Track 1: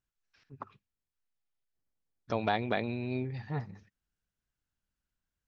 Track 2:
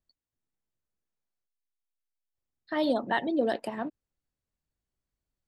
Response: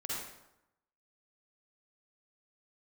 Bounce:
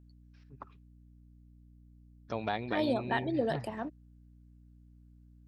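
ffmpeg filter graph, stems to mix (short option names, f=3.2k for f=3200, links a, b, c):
-filter_complex "[0:a]volume=-4dB[a];[1:a]aeval=exprs='val(0)+0.00251*(sin(2*PI*60*n/s)+sin(2*PI*2*60*n/s)/2+sin(2*PI*3*60*n/s)/3+sin(2*PI*4*60*n/s)/4+sin(2*PI*5*60*n/s)/5)':c=same,volume=-4dB[b];[a][b]amix=inputs=2:normalize=0"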